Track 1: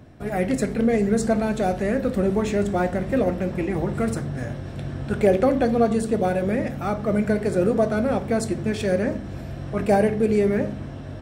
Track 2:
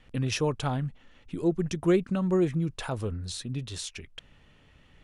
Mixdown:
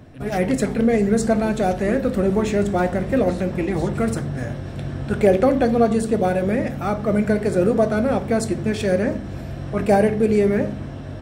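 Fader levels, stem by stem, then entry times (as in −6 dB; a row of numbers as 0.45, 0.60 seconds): +2.5, −9.5 decibels; 0.00, 0.00 seconds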